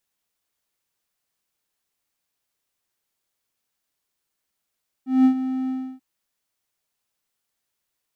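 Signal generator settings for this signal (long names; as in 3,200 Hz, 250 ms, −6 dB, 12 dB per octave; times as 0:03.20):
note with an ADSR envelope triangle 260 Hz, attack 189 ms, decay 89 ms, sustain −12 dB, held 0.63 s, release 307 ms −8.5 dBFS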